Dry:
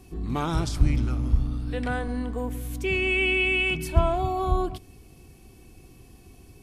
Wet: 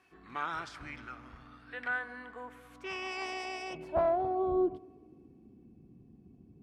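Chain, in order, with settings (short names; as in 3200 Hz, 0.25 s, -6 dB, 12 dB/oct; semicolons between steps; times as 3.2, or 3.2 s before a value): 2.79–4.35 self-modulated delay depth 0.35 ms; band-limited delay 0.112 s, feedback 67%, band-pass 760 Hz, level -23 dB; band-pass sweep 1600 Hz -> 200 Hz, 2.31–5.8; gain +2 dB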